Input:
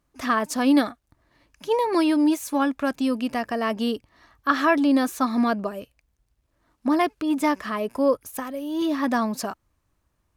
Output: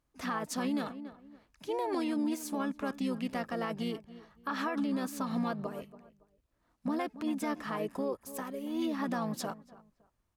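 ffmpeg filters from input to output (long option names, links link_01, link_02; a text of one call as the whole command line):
ffmpeg -i in.wav -filter_complex "[0:a]asplit=2[link_01][link_02];[link_02]adelay=281,lowpass=frequency=2000:poles=1,volume=-18.5dB,asplit=2[link_03][link_04];[link_04]adelay=281,lowpass=frequency=2000:poles=1,volume=0.29[link_05];[link_01][link_03][link_05]amix=inputs=3:normalize=0,asplit=2[link_06][link_07];[link_07]asetrate=33038,aresample=44100,atempo=1.33484,volume=-6dB[link_08];[link_06][link_08]amix=inputs=2:normalize=0,alimiter=limit=-16dB:level=0:latency=1:release=88,volume=-8.5dB" out.wav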